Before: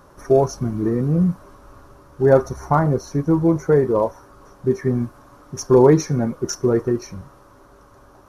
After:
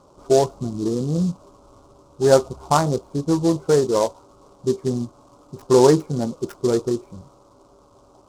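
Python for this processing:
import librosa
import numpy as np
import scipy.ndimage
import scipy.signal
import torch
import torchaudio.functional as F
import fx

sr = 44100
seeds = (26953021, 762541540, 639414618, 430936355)

y = fx.wiener(x, sr, points=25)
y = scipy.signal.sosfilt(scipy.signal.butter(2, 1500.0, 'lowpass', fs=sr, output='sos'), y)
y = fx.tilt_eq(y, sr, slope=2.5)
y = fx.noise_mod_delay(y, sr, seeds[0], noise_hz=5400.0, depth_ms=0.039)
y = F.gain(torch.from_numpy(y), 2.5).numpy()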